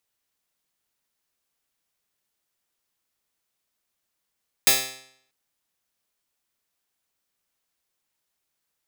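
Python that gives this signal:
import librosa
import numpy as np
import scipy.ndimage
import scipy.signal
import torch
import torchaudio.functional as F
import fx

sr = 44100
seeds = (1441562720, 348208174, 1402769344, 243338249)

y = fx.pluck(sr, length_s=0.64, note=48, decay_s=0.67, pick=0.09, brightness='bright')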